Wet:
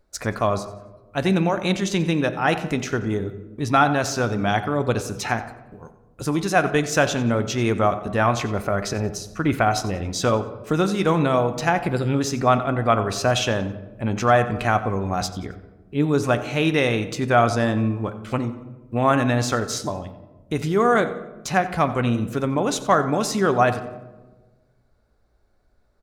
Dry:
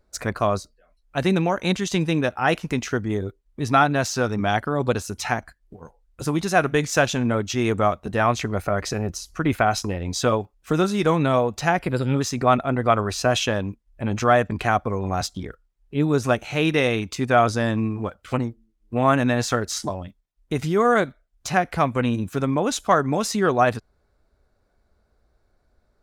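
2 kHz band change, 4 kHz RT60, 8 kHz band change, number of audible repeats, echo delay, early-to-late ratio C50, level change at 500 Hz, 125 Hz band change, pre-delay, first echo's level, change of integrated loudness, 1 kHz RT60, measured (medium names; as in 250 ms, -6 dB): +0.5 dB, 0.65 s, 0.0 dB, 2, 90 ms, 11.5 dB, +0.5 dB, +1.0 dB, 3 ms, -17.0 dB, +0.5 dB, 1.0 s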